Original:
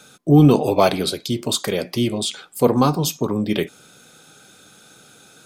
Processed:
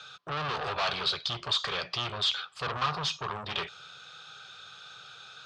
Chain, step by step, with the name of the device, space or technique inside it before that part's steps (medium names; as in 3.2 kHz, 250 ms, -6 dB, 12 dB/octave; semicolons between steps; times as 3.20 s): scooped metal amplifier (valve stage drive 26 dB, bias 0.35; cabinet simulation 93–4200 Hz, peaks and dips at 220 Hz -8 dB, 390 Hz +4 dB, 1.2 kHz +7 dB, 2.1 kHz -7 dB; amplifier tone stack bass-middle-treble 10-0-10); trim +9 dB